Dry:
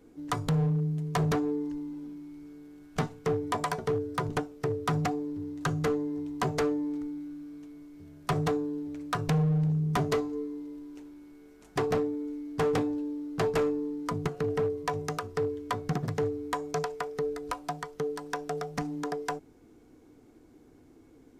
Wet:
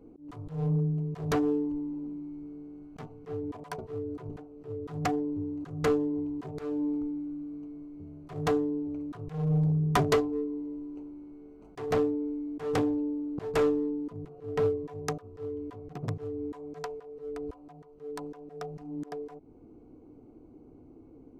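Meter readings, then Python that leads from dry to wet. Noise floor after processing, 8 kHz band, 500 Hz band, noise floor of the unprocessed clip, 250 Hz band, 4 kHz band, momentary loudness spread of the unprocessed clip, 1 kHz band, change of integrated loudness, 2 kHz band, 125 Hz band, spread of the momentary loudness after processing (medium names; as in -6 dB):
-54 dBFS, -4.5 dB, -1.0 dB, -57 dBFS, +0.5 dB, -3.5 dB, 14 LU, -4.5 dB, -1.0 dB, -4.5 dB, -2.0 dB, 17 LU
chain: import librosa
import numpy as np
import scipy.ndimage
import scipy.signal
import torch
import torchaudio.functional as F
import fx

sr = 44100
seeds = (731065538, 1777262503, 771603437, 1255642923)

y = fx.wiener(x, sr, points=25)
y = fx.dynamic_eq(y, sr, hz=190.0, q=1.7, threshold_db=-45.0, ratio=4.0, max_db=-5)
y = fx.auto_swell(y, sr, attack_ms=257.0)
y = y * librosa.db_to_amplitude(4.5)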